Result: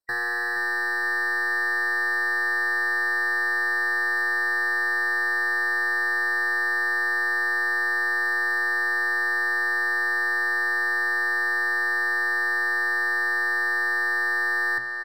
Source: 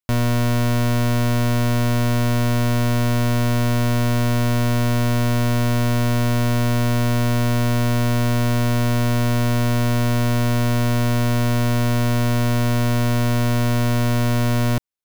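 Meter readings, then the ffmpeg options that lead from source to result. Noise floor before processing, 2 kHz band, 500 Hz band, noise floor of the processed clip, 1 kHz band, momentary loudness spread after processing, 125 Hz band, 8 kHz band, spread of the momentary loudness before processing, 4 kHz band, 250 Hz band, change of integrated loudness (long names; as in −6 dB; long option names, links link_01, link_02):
−18 dBFS, +11.0 dB, −13.0 dB, −27 dBFS, −3.0 dB, 1 LU, below −40 dB, below −10 dB, 0 LU, −9.5 dB, below −20 dB, −3.0 dB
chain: -filter_complex "[0:a]equalizer=frequency=280:width=0.78:gain=-10.5,asoftclip=type=tanh:threshold=-27.5dB,aresample=32000,aresample=44100,asplit=2[link_01][link_02];[link_02]adelay=470,lowpass=frequency=3500:poles=1,volume=-7dB,asplit=2[link_03][link_04];[link_04]adelay=470,lowpass=frequency=3500:poles=1,volume=0.5,asplit=2[link_05][link_06];[link_06]adelay=470,lowpass=frequency=3500:poles=1,volume=0.5,asplit=2[link_07][link_08];[link_08]adelay=470,lowpass=frequency=3500:poles=1,volume=0.5,asplit=2[link_09][link_10];[link_10]adelay=470,lowpass=frequency=3500:poles=1,volume=0.5,asplit=2[link_11][link_12];[link_12]adelay=470,lowpass=frequency=3500:poles=1,volume=0.5[link_13];[link_03][link_05][link_07][link_09][link_11][link_13]amix=inputs=6:normalize=0[link_14];[link_01][link_14]amix=inputs=2:normalize=0,aeval=exprs='val(0)*sin(2*PI*1800*n/s)':channel_layout=same,bandreject=frequency=60:width_type=h:width=6,bandreject=frequency=120:width_type=h:width=6,bandreject=frequency=180:width_type=h:width=6,bandreject=frequency=240:width_type=h:width=6,afftfilt=real='re*eq(mod(floor(b*sr/1024/1900),2),0)':imag='im*eq(mod(floor(b*sr/1024/1900),2),0)':win_size=1024:overlap=0.75,volume=6.5dB"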